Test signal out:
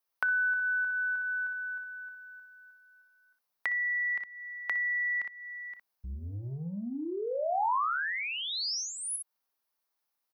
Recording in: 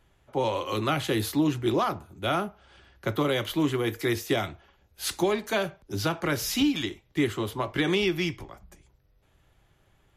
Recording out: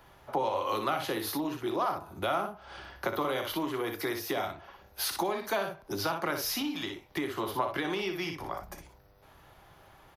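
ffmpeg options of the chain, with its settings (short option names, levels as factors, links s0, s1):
-filter_complex "[0:a]acrossover=split=200[s0][s1];[s0]asoftclip=type=tanh:threshold=0.0133[s2];[s2][s1]amix=inputs=2:normalize=0,lowshelf=f=70:g=-6,aecho=1:1:30|60:0.2|0.447,acompressor=threshold=0.00891:ratio=4,equalizer=f=920:w=0.82:g=9.5,aexciter=amount=1.3:drive=4.4:freq=4300,volume=1.78"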